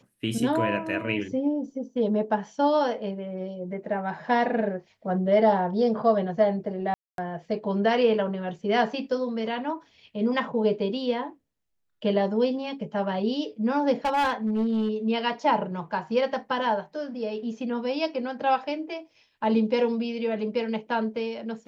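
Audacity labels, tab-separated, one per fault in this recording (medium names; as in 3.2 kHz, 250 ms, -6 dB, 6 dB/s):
6.940000	7.180000	dropout 242 ms
14.050000	14.890000	clipped -20.5 dBFS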